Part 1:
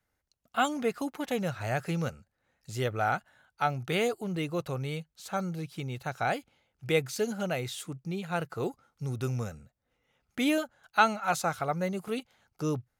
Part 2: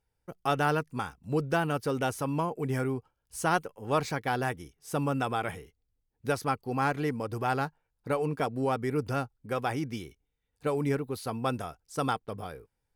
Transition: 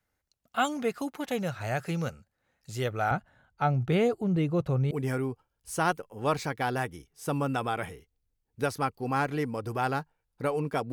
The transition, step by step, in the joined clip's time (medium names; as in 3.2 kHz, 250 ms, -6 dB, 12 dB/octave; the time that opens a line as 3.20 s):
part 1
3.11–4.91 s: tilt EQ -3 dB/octave
4.91 s: go over to part 2 from 2.57 s